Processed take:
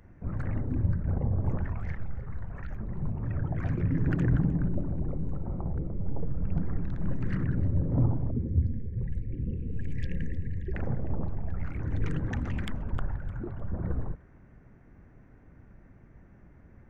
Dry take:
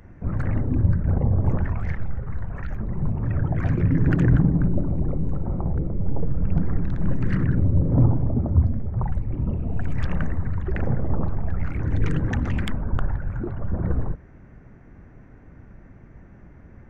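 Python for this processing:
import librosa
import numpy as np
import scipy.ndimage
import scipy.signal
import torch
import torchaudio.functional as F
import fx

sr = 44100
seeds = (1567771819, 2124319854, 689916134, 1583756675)

y = fx.spec_box(x, sr, start_s=8.31, length_s=2.42, low_hz=540.0, high_hz=1600.0, gain_db=-28)
y = fx.peak_eq(y, sr, hz=1300.0, db=-6.0, octaves=0.77, at=(10.95, 11.54))
y = fx.echo_wet_highpass(y, sr, ms=306, feedback_pct=35, hz=1500.0, wet_db=-16.5)
y = y * 10.0 ** (-7.5 / 20.0)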